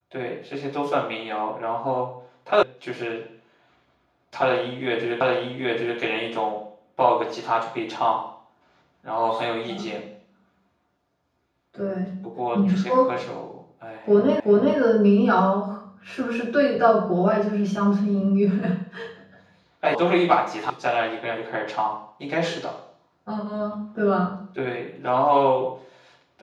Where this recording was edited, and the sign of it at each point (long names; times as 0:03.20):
0:02.63: cut off before it has died away
0:05.21: the same again, the last 0.78 s
0:14.40: the same again, the last 0.38 s
0:19.95: cut off before it has died away
0:20.70: cut off before it has died away